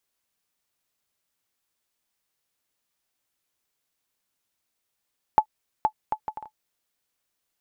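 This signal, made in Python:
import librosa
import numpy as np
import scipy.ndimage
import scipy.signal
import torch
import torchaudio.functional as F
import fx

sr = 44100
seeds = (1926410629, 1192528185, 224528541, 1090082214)

y = fx.bouncing_ball(sr, first_gap_s=0.47, ratio=0.58, hz=862.0, decay_ms=77.0, level_db=-6.0)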